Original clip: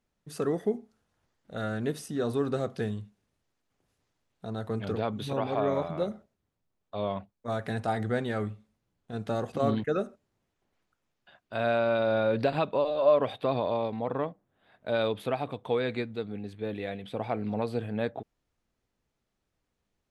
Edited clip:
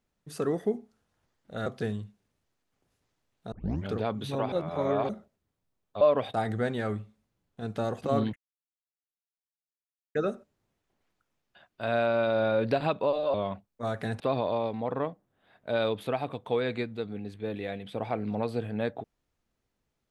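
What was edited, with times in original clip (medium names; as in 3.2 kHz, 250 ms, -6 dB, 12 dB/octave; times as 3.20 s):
1.66–2.64 s: delete
4.50 s: tape start 0.35 s
5.50–6.07 s: reverse
6.99–7.85 s: swap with 13.06–13.39 s
9.87 s: insert silence 1.79 s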